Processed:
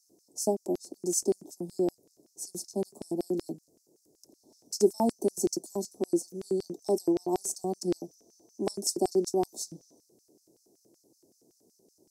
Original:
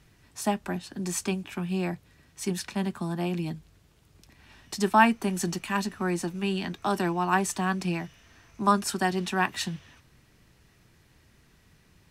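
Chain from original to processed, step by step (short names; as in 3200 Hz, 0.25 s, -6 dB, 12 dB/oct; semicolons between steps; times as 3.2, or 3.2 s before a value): inverse Chebyshev band-stop 1400–2900 Hz, stop band 60 dB; LFO high-pass square 5.3 Hz 340–4900 Hz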